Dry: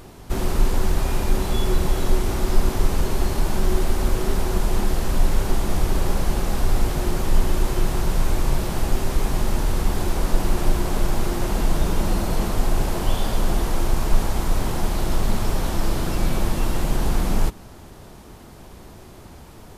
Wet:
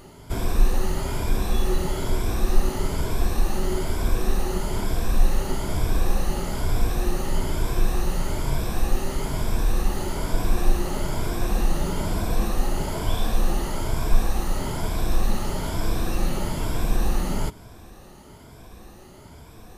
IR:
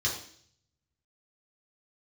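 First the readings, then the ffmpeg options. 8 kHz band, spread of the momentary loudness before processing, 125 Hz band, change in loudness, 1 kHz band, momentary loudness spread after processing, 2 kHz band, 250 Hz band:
-2.5 dB, 7 LU, -2.5 dB, -2.5 dB, -2.5 dB, 8 LU, -2.5 dB, -2.5 dB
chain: -af "afftfilt=real='re*pow(10,9/40*sin(2*PI*(1.7*log(max(b,1)*sr/1024/100)/log(2)-(1.1)*(pts-256)/sr)))':imag='im*pow(10,9/40*sin(2*PI*(1.7*log(max(b,1)*sr/1024/100)/log(2)-(1.1)*(pts-256)/sr)))':win_size=1024:overlap=0.75,volume=-3.5dB"

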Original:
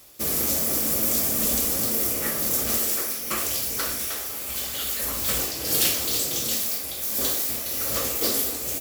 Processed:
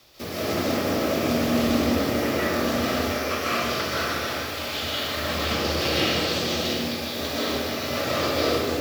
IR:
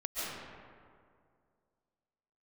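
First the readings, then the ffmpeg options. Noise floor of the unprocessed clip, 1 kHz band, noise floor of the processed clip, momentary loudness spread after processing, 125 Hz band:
-32 dBFS, +8.5 dB, -31 dBFS, 6 LU, +7.5 dB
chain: -filter_complex "[0:a]acrossover=split=2900[a][b];[b]acompressor=threshold=-29dB:ratio=4:attack=1:release=60[c];[a][c]amix=inputs=2:normalize=0,highshelf=f=6.3k:t=q:w=1.5:g=-11.5,afreqshift=18[d];[1:a]atrim=start_sample=2205[e];[d][e]afir=irnorm=-1:irlink=0,volume=3dB"

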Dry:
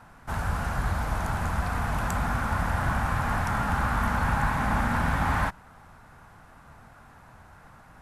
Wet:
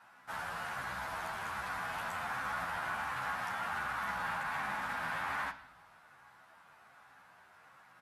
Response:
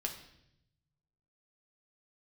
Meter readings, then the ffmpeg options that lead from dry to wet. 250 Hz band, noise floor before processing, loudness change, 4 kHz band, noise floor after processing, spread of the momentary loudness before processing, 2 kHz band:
-20.5 dB, -52 dBFS, -10.0 dB, -4.5 dB, -61 dBFS, 4 LU, -5.5 dB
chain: -filter_complex "[0:a]highpass=f=1.5k:p=1,alimiter=level_in=3dB:limit=-24dB:level=0:latency=1:release=16,volume=-3dB,asplit=2[a][b];[b]highshelf=f=6.2k:g=-11.5[c];[1:a]atrim=start_sample=2205,lowpass=5.4k,highshelf=f=3.9k:g=8[d];[c][d]afir=irnorm=-1:irlink=0,volume=-1dB[e];[a][e]amix=inputs=2:normalize=0,asplit=2[f][g];[g]adelay=11.1,afreqshift=-1.3[h];[f][h]amix=inputs=2:normalize=1,volume=-4dB"

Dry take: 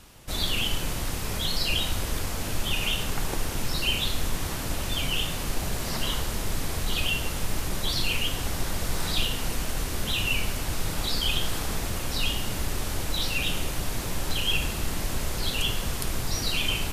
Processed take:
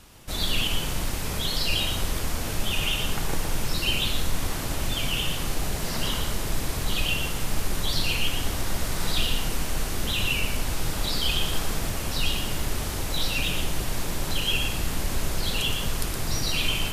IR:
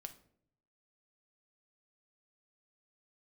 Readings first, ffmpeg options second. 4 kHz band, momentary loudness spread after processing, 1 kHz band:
+1.0 dB, 5 LU, +1.0 dB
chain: -filter_complex "[0:a]asplit=2[a][b];[1:a]atrim=start_sample=2205,adelay=117[c];[b][c]afir=irnorm=-1:irlink=0,volume=-0.5dB[d];[a][d]amix=inputs=2:normalize=0"

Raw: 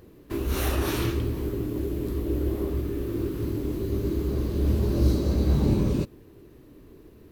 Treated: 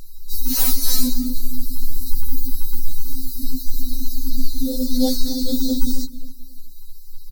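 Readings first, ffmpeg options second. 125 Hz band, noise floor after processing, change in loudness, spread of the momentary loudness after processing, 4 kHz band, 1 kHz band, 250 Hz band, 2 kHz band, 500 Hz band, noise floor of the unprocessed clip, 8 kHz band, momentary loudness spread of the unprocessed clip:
-8.0 dB, -33 dBFS, +3.0 dB, 12 LU, +12.0 dB, -3.0 dB, +3.0 dB, n/a, -5.5 dB, -51 dBFS, +15.0 dB, 7 LU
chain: -filter_complex "[0:a]afftfilt=real='re*(1-between(b*sr/4096,120,3900))':imag='im*(1-between(b*sr/4096,120,3900))':win_size=4096:overlap=0.75,aeval=exprs='val(0)+0.00251*(sin(2*PI*50*n/s)+sin(2*PI*2*50*n/s)/2+sin(2*PI*3*50*n/s)/3+sin(2*PI*4*50*n/s)/4+sin(2*PI*5*50*n/s)/5)':c=same,aeval=exprs='0.282*sin(PI/2*7.08*val(0)/0.282)':c=same,afreqshift=-58,equalizer=f=16k:w=5.9:g=14.5,bandreject=f=50:t=h:w=6,bandreject=f=100:t=h:w=6,bandreject=f=150:t=h:w=6,asplit=2[a][b];[b]adelay=264,lowpass=f=3k:p=1,volume=-14.5dB,asplit=2[c][d];[d]adelay=264,lowpass=f=3k:p=1,volume=0.27,asplit=2[e][f];[f]adelay=264,lowpass=f=3k:p=1,volume=0.27[g];[a][c][e][g]amix=inputs=4:normalize=0,afftfilt=real='re*3.46*eq(mod(b,12),0)':imag='im*3.46*eq(mod(b,12),0)':win_size=2048:overlap=0.75"

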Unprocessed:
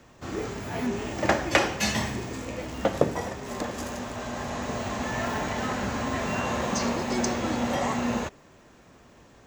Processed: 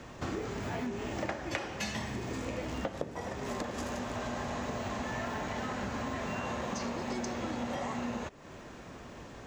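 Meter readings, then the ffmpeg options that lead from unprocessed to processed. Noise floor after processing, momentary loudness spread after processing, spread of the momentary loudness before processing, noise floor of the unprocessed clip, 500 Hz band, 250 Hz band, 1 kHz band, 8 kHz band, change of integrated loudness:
-48 dBFS, 5 LU, 8 LU, -54 dBFS, -8.0 dB, -7.5 dB, -7.5 dB, -10.5 dB, -8.0 dB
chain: -af "highshelf=f=10k:g=-11,acompressor=threshold=-40dB:ratio=8,volume=6.5dB"

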